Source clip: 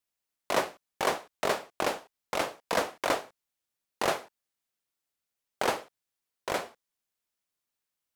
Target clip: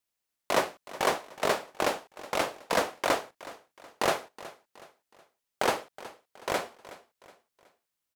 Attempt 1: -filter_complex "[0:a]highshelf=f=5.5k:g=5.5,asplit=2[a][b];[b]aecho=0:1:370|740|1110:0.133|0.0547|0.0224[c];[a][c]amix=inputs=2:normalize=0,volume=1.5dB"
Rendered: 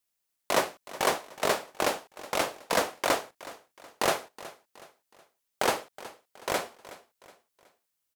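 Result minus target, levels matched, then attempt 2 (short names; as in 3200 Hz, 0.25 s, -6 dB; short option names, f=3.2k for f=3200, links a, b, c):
8000 Hz band +3.0 dB
-filter_complex "[0:a]asplit=2[a][b];[b]aecho=0:1:370|740|1110:0.133|0.0547|0.0224[c];[a][c]amix=inputs=2:normalize=0,volume=1.5dB"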